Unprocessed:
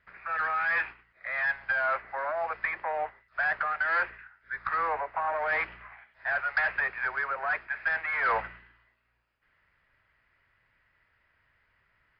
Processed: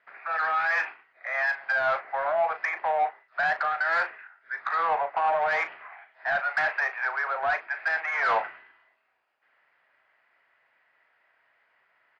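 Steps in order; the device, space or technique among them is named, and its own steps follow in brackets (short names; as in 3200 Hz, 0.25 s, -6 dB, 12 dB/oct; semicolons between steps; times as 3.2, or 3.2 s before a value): 6.27–7.27 HPF 410 Hz 24 dB/oct; intercom (BPF 380–4500 Hz; bell 730 Hz +8 dB 0.55 oct; soft clip -19.5 dBFS, distortion -20 dB; doubler 37 ms -10.5 dB); gain +2 dB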